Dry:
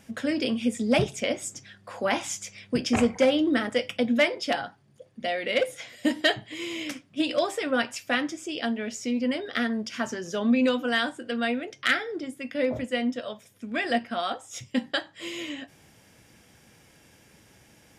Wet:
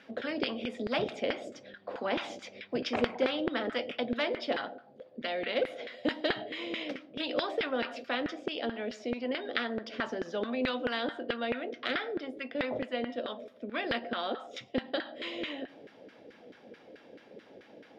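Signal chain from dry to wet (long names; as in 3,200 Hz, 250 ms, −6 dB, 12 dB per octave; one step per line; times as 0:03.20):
on a send at −22.5 dB: convolution reverb RT60 0.65 s, pre-delay 70 ms
on the sum: auto-filter band-pass saw down 4.6 Hz 410–1,600 Hz
graphic EQ with 10 bands 250 Hz +11 dB, 500 Hz +8 dB, 1,000 Hz −7 dB, 4,000 Hz +12 dB, 8,000 Hz −10 dB
every bin compressed towards the loudest bin 2 to 1
level −7 dB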